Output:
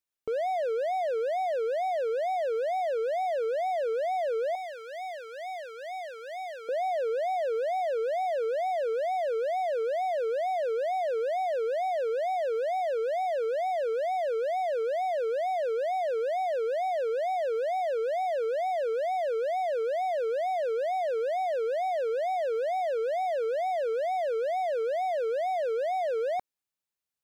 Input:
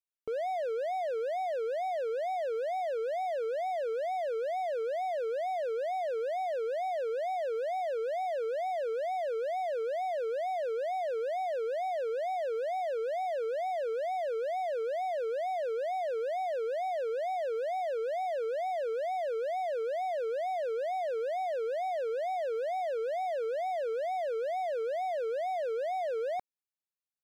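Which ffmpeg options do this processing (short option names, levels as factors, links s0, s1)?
-filter_complex "[0:a]asettb=1/sr,asplit=3[s0][s1][s2];[s0]atrim=end=4.554[s3];[s1]atrim=start=4.55:end=6.69,asetpts=PTS-STARTPTS,afade=t=in:d=0.004:c=qsin,afade=t=out:st=2.136:d=0.004:c=qsin,highpass=1100[s4];[s2]atrim=start=6.686[s5];[s3][s4]acrossfade=d=0.004:c1=hsin:c2=qsin[s6];[s6][s5]acrossfade=d=0.004:c1=qsin:c2=hsin,volume=1.58"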